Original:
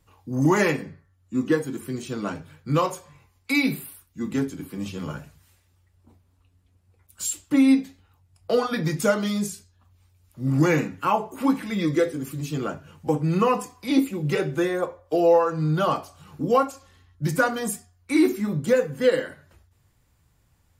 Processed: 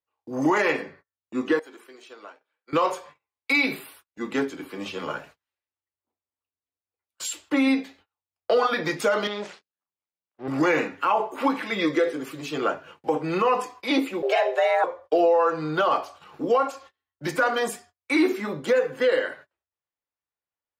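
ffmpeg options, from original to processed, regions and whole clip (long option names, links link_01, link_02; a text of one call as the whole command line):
ffmpeg -i in.wav -filter_complex "[0:a]asettb=1/sr,asplit=3[link_01][link_02][link_03];[link_01]atrim=end=1.594[link_04];[link_02]atrim=start=1.59:end=2.73,asetpts=PTS-STARTPTS,afade=type=in:duration=0.004:curve=qsin,afade=type=out:start_time=1.136:duration=0.004:curve=qsin,highpass=420,acompressor=threshold=-44dB:ratio=8:attack=3.2:release=140:knee=1:detection=peak[link_05];[link_03]atrim=start=2.726[link_06];[link_04][link_05]acrossfade=duration=0.004:curve1=hsin:curve2=qsin[link_07];[link_07][link_06]acrossfade=duration=0.004:curve1=qsin:curve2=hsin,asettb=1/sr,asplit=3[link_08][link_09][link_10];[link_08]atrim=end=9.274[link_11];[link_09]atrim=start=9.27:end=10.48,asetpts=PTS-STARTPTS,afade=type=in:duration=0.004:curve=qsin,afade=type=out:start_time=1.206:duration=0.004:curve=qsin,aeval=exprs='max(val(0),0)':channel_layout=same,highpass=120,lowpass=4200[link_12];[link_10]atrim=start=10.476[link_13];[link_11][link_12]acrossfade=duration=0.004:curve1=hsin:curve2=qsin[link_14];[link_14][link_13]acrossfade=duration=0.004:curve1=qsin:curve2=hsin,asettb=1/sr,asplit=3[link_15][link_16][link_17];[link_15]atrim=end=14.224[link_18];[link_16]atrim=start=14.22:end=14.84,asetpts=PTS-STARTPTS,afade=type=in:duration=0.004:curve=qsin,afade=type=out:start_time=0.616:duration=0.004:curve=qsin,highpass=170,equalizer=frequency=11000:width_type=o:width=0.24:gain=-9,afreqshift=250[link_19];[link_17]atrim=start=14.836[link_20];[link_18][link_19]acrossfade=duration=0.004:curve1=hsin:curve2=qsin[link_21];[link_21][link_20]acrossfade=duration=0.004:curve1=qsin:curve2=hsin,agate=range=-31dB:threshold=-47dB:ratio=16:detection=peak,acrossover=split=350 4500:gain=0.0708 1 0.178[link_22][link_23][link_24];[link_22][link_23][link_24]amix=inputs=3:normalize=0,alimiter=limit=-20dB:level=0:latency=1:release=62,volume=7.5dB" out.wav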